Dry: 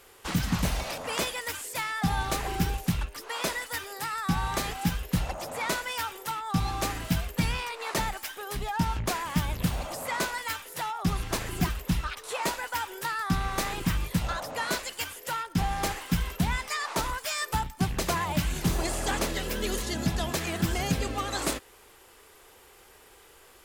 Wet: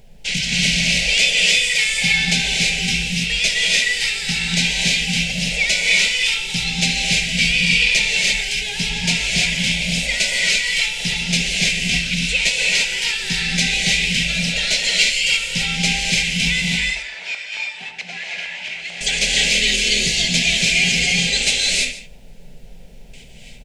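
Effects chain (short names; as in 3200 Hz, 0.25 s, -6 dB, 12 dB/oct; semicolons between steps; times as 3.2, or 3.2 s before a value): LPF 7700 Hz 24 dB/oct; notch 1800 Hz, Q 19; gate with hold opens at -43 dBFS; resonant high shelf 1600 Hz +13.5 dB, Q 3; added noise brown -41 dBFS; fixed phaser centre 310 Hz, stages 6; 16.68–19.01 LFO band-pass saw up 4.5 Hz 730–1900 Hz; echo 0.145 s -16 dB; non-linear reverb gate 0.36 s rising, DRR -3 dB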